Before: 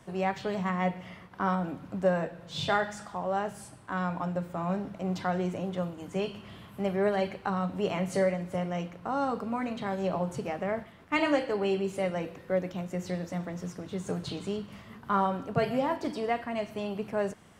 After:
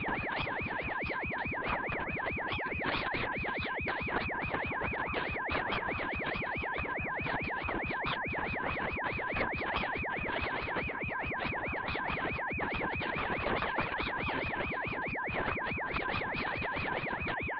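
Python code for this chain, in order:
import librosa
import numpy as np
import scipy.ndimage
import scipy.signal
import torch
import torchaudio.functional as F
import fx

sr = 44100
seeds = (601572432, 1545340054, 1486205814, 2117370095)

y = fx.freq_compress(x, sr, knee_hz=1700.0, ratio=4.0)
y = fx.peak_eq(y, sr, hz=1600.0, db=4.0, octaves=1.6)
y = fx.over_compress(y, sr, threshold_db=-36.0, ratio=-1.0)
y = 10.0 ** (-19.0 / 20.0) * np.tanh(y / 10.0 ** (-19.0 / 20.0))
y = fx.cheby_harmonics(y, sr, harmonics=(7,), levels_db=(-14,), full_scale_db=-17.5)
y = y + 10.0 ** (-36.0 / 20.0) * np.sin(2.0 * np.pi * 1300.0 * np.arange(len(y)) / sr)
y = fx.lpc_vocoder(y, sr, seeds[0], excitation='whisper', order=10)
y = fx.ring_lfo(y, sr, carrier_hz=750.0, swing_pct=65, hz=4.7)
y = F.gain(torch.from_numpy(y), 6.0).numpy()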